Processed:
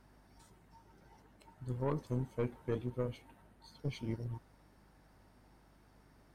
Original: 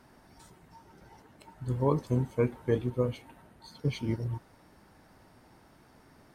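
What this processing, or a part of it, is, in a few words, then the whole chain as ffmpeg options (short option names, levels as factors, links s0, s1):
valve amplifier with mains hum: -af "aeval=exprs='(tanh(11.2*val(0)+0.45)-tanh(0.45))/11.2':c=same,aeval=exprs='val(0)+0.001*(sin(2*PI*50*n/s)+sin(2*PI*2*50*n/s)/2+sin(2*PI*3*50*n/s)/3+sin(2*PI*4*50*n/s)/4+sin(2*PI*5*50*n/s)/5)':c=same,volume=0.501"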